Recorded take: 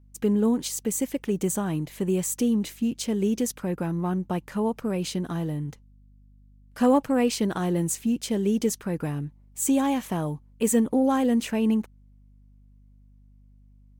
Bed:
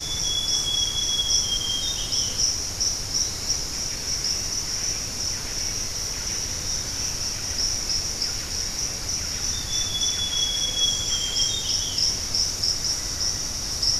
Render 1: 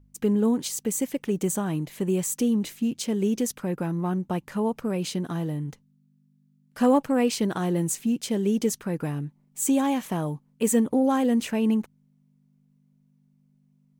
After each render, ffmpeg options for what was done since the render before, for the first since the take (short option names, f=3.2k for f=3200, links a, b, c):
-af "bandreject=f=50:t=h:w=4,bandreject=f=100:t=h:w=4"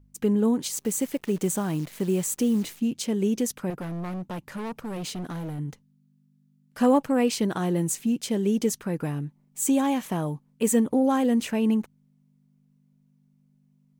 -filter_complex "[0:a]asettb=1/sr,asplit=3[a][b][c];[a]atrim=end=0.734[d];[b]atrim=start=0.73:end=2.81,asetpts=PTS-STARTPTS,afade=t=in:d=0.004:c=qsin,afade=t=out:st=2.076:d=0.004:c=qsin,acrusher=bits=8:dc=4:mix=0:aa=0.000001[e];[c]atrim=start=2.806[f];[d][e]acrossfade=d=0.004:c1=hsin:c2=qsin[g];[g][f]acrossfade=d=0.004:c1=qsin:c2=hsin,asettb=1/sr,asplit=3[h][i][j];[h]atrim=end=3.704[k];[i]atrim=start=3.7:end=5.59,asetpts=PTS-STARTPTS,afade=t=in:d=0.004:c=qsin,afade=t=out:st=1.886:d=0.004:c=qsin,asoftclip=type=hard:threshold=-30.5dB[l];[j]atrim=start=5.586[m];[k][l]acrossfade=d=0.004:c1=hsin:c2=qsin[n];[n][m]acrossfade=d=0.004:c1=qsin:c2=hsin"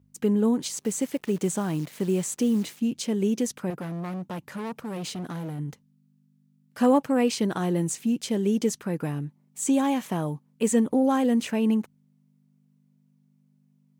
-filter_complex "[0:a]highpass=88,acrossover=split=9300[a][b];[b]acompressor=threshold=-47dB:ratio=4:attack=1:release=60[c];[a][c]amix=inputs=2:normalize=0"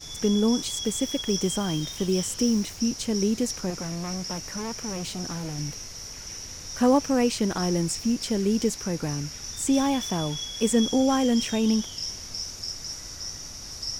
-filter_complex "[1:a]volume=-10.5dB[a];[0:a][a]amix=inputs=2:normalize=0"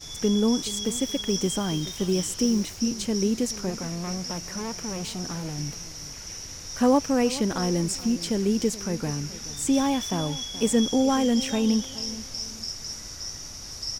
-filter_complex "[0:a]asplit=2[a][b];[b]adelay=426,lowpass=f=2k:p=1,volume=-16dB,asplit=2[c][d];[d]adelay=426,lowpass=f=2k:p=1,volume=0.35,asplit=2[e][f];[f]adelay=426,lowpass=f=2k:p=1,volume=0.35[g];[a][c][e][g]amix=inputs=4:normalize=0"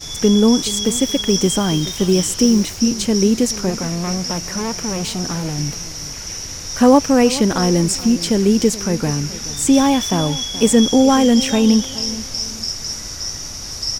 -af "volume=9.5dB,alimiter=limit=-2dB:level=0:latency=1"